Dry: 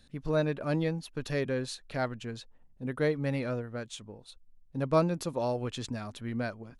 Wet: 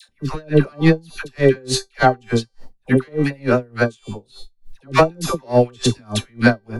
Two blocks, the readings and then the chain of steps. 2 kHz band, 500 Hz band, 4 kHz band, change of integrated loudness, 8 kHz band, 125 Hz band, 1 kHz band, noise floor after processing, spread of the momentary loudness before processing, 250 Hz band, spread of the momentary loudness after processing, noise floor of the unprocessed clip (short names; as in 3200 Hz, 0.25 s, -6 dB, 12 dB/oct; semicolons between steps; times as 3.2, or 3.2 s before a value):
+16.5 dB, +12.5 dB, +15.5 dB, +13.5 dB, +16.5 dB, +12.5 dB, +16.0 dB, -60 dBFS, 14 LU, +13.5 dB, 12 LU, -60 dBFS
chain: soft clip -21.5 dBFS, distortion -16 dB; resonator 390 Hz, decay 0.41 s, harmonics all, mix 80%; dispersion lows, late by 90 ms, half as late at 870 Hz; maximiser +35.5 dB; dB-linear tremolo 3.4 Hz, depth 35 dB